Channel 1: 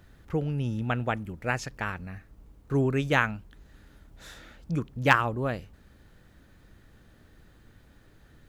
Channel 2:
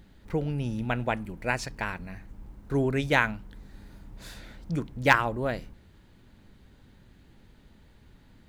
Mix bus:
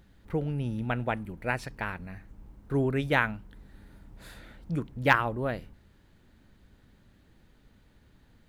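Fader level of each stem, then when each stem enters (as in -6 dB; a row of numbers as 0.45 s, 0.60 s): -9.5 dB, -5.5 dB; 0.00 s, 0.00 s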